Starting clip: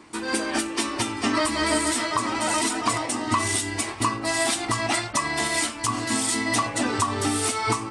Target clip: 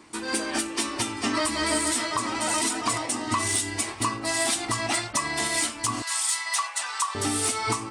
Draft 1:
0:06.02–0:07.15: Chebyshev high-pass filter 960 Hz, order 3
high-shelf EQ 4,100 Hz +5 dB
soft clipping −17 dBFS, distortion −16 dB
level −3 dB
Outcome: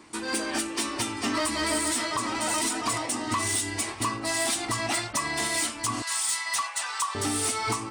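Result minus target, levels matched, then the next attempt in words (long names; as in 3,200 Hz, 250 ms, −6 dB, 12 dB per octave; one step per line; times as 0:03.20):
soft clipping: distortion +14 dB
0:06.02–0:07.15: Chebyshev high-pass filter 960 Hz, order 3
high-shelf EQ 4,100 Hz +5 dB
soft clipping −8 dBFS, distortion −29 dB
level −3 dB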